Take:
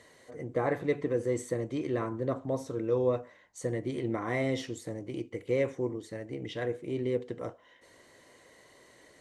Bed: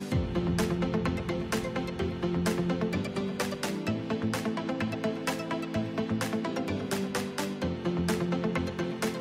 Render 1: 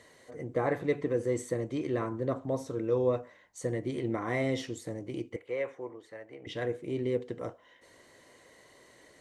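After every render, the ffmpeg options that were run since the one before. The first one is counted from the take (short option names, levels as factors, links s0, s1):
-filter_complex "[0:a]asettb=1/sr,asplit=3[s0][s1][s2];[s0]atrim=end=5.364[s3];[s1]atrim=start=5.36:end=6.47,asetpts=PTS-STARTPTS,afade=t=in:d=0.004:c=qsin,afade=t=out:st=1.106:d=0.004:c=qsin,acrossover=split=500 2800:gain=0.141 1 0.224[s4][s5][s6];[s4][s5][s6]amix=inputs=3:normalize=0[s7];[s2]atrim=start=6.466[s8];[s3][s7]acrossfade=d=0.004:c1=hsin:c2=qsin[s9];[s9][s8]acrossfade=d=0.004:c1=qsin:c2=hsin"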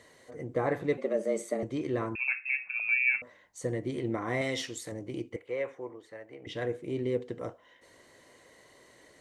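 -filter_complex "[0:a]asettb=1/sr,asplit=3[s0][s1][s2];[s0]atrim=end=0.974[s3];[s1]atrim=start=0.97:end=1.63,asetpts=PTS-STARTPTS,afade=t=in:d=0.004:c=qsin,afade=t=out:st=0.656:d=0.004:c=qsin,afreqshift=99[s4];[s2]atrim=start=1.626[s5];[s3][s4]acrossfade=d=0.004:c1=hsin:c2=qsin[s6];[s6][s5]acrossfade=d=0.004:c1=qsin:c2=hsin,asettb=1/sr,asplit=3[s7][s8][s9];[s7]atrim=end=2.154[s10];[s8]atrim=start=2.15:end=3.22,asetpts=PTS-STARTPTS,afade=t=in:d=0.004:c=qsin,afade=t=out:st=1.066:d=0.004:c=qsin,lowpass=f=2400:t=q:w=0.5098,lowpass=f=2400:t=q:w=0.6013,lowpass=f=2400:t=q:w=0.9,lowpass=f=2400:t=q:w=2.563,afreqshift=-2800[s11];[s9]atrim=start=3.216[s12];[s10][s11]acrossfade=d=0.004:c1=hsin:c2=qsin[s13];[s13][s12]acrossfade=d=0.004:c1=qsin:c2=hsin,asettb=1/sr,asplit=3[s14][s15][s16];[s14]atrim=end=4.414[s17];[s15]atrim=start=4.41:end=4.92,asetpts=PTS-STARTPTS,afade=t=in:d=0.004:c=qsin,afade=t=out:st=0.506:d=0.004:c=qsin,tiltshelf=f=740:g=-6.5[s18];[s16]atrim=start=4.916[s19];[s17][s18]acrossfade=d=0.004:c1=hsin:c2=qsin[s20];[s20][s19]acrossfade=d=0.004:c1=qsin:c2=hsin"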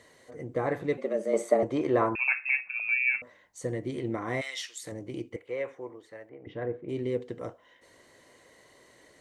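-filter_complex "[0:a]asettb=1/sr,asplit=3[s0][s1][s2];[s0]atrim=end=1.334[s3];[s1]atrim=start=1.33:end=2.61,asetpts=PTS-STARTPTS,afade=t=in:d=0.004:c=qsin,afade=t=out:st=1.276:d=0.004:c=qsin,equalizer=f=810:w=0.61:g=12[s4];[s2]atrim=start=2.606[s5];[s3][s4]acrossfade=d=0.004:c1=hsin:c2=qsin[s6];[s6][s5]acrossfade=d=0.004:c1=qsin:c2=hsin,asplit=3[s7][s8][s9];[s7]afade=t=out:st=4.4:d=0.02[s10];[s8]highpass=1400,afade=t=in:st=4.4:d=0.02,afade=t=out:st=4.82:d=0.02[s11];[s9]afade=t=in:st=4.82:d=0.02[s12];[s10][s11][s12]amix=inputs=3:normalize=0,asettb=1/sr,asplit=3[s13][s14][s15];[s13]atrim=end=6.294[s16];[s14]atrim=start=6.29:end=6.89,asetpts=PTS-STARTPTS,afade=t=in:d=0.004:c=qsin,afade=t=out:st=0.596:d=0.004:c=qsin,lowpass=1500[s17];[s15]atrim=start=6.886[s18];[s16][s17]acrossfade=d=0.004:c1=hsin:c2=qsin[s19];[s19][s18]acrossfade=d=0.004:c1=qsin:c2=hsin"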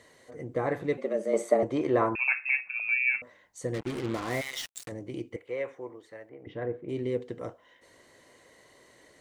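-filter_complex "[0:a]asettb=1/sr,asplit=3[s0][s1][s2];[s0]atrim=end=3.744[s3];[s1]atrim=start=3.74:end=4.89,asetpts=PTS-STARTPTS,afade=t=in:d=0.004:c=qsin,afade=t=out:st=1.146:d=0.004:c=qsin,acrusher=bits=5:mix=0:aa=0.5[s4];[s2]atrim=start=4.886[s5];[s3][s4]acrossfade=d=0.004:c1=hsin:c2=qsin[s6];[s6][s5]acrossfade=d=0.004:c1=qsin:c2=hsin"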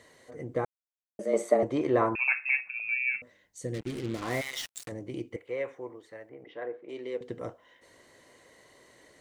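-filter_complex "[0:a]asettb=1/sr,asplit=3[s0][s1][s2];[s0]atrim=end=2.704[s3];[s1]atrim=start=2.7:end=4.22,asetpts=PTS-STARTPTS,afade=t=in:d=0.004:c=qsin,afade=t=out:st=1.516:d=0.004:c=qsin,equalizer=f=1000:w=0.86:g=-11[s4];[s2]atrim=start=4.216[s5];[s3][s4]acrossfade=d=0.004:c1=hsin:c2=qsin[s6];[s6][s5]acrossfade=d=0.004:c1=qsin:c2=hsin,asettb=1/sr,asplit=3[s7][s8][s9];[s7]atrim=end=6.444[s10];[s8]atrim=start=6.44:end=7.21,asetpts=PTS-STARTPTS,afade=t=in:d=0.004:c=qsin,afade=t=out:st=0.766:d=0.004:c=qsin,highpass=490,lowpass=6700[s11];[s9]atrim=start=7.206[s12];[s10][s11]acrossfade=d=0.004:c1=hsin:c2=qsin[s13];[s13][s12]acrossfade=d=0.004:c1=qsin:c2=hsin,asplit=3[s14][s15][s16];[s14]atrim=end=0.65,asetpts=PTS-STARTPTS,afade=t=out:st=0.646:d=0.004:c=hsin[s17];[s15]atrim=start=0.65:end=1.19,asetpts=PTS-STARTPTS,volume=0[s18];[s16]atrim=start=1.19,asetpts=PTS-STARTPTS,afade=t=in:d=0.004:c=hsin[s19];[s17][s18][s19]concat=n=3:v=0:a=1"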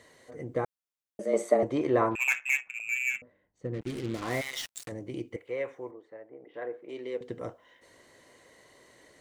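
-filter_complex "[0:a]asettb=1/sr,asplit=3[s0][s1][s2];[s0]atrim=end=2.114[s3];[s1]atrim=start=2.11:end=3.81,asetpts=PTS-STARTPTS,afade=t=in:d=0.004:c=qsin,afade=t=out:st=1.696:d=0.004:c=qsin,adynamicsmooth=sensitivity=4.5:basefreq=1300[s4];[s2]atrim=start=3.806[s5];[s3][s4]acrossfade=d=0.004:c1=hsin:c2=qsin[s6];[s6][s5]acrossfade=d=0.004:c1=qsin:c2=hsin,asettb=1/sr,asplit=3[s7][s8][s9];[s7]atrim=end=5.914[s10];[s8]atrim=start=5.91:end=6.54,asetpts=PTS-STARTPTS,afade=t=in:d=0.004:c=qsin,afade=t=out:st=0.626:d=0.004:c=qsin,bandpass=f=490:t=q:w=0.62[s11];[s9]atrim=start=6.536[s12];[s10][s11]acrossfade=d=0.004:c1=hsin:c2=qsin[s13];[s13][s12]acrossfade=d=0.004:c1=qsin:c2=hsin"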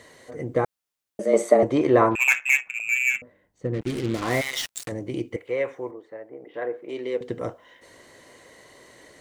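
-af "volume=2.37,alimiter=limit=0.708:level=0:latency=1"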